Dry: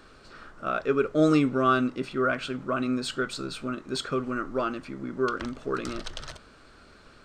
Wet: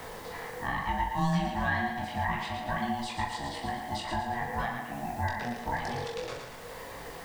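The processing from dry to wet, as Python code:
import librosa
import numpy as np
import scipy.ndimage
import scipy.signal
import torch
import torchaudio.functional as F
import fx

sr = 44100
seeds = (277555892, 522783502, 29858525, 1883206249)

y = fx.cheby1_lowpass(x, sr, hz=2200.0, order=4, at=(4.67, 5.27))
y = y * np.sin(2.0 * np.pi * 480.0 * np.arange(len(y)) / sr)
y = fx.quant_dither(y, sr, seeds[0], bits=10, dither='triangular')
y = fx.chorus_voices(y, sr, voices=4, hz=0.65, base_ms=21, depth_ms=3.7, mix_pct=45)
y = fx.doubler(y, sr, ms=42.0, db=-7)
y = fx.echo_thinned(y, sr, ms=113, feedback_pct=41, hz=420.0, wet_db=-6)
y = fx.band_squash(y, sr, depth_pct=70)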